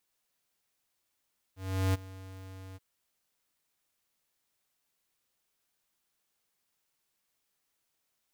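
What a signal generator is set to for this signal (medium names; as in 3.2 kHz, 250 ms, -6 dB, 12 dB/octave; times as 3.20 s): ADSR square 94.8 Hz, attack 379 ms, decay 22 ms, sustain -20 dB, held 1.20 s, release 28 ms -26 dBFS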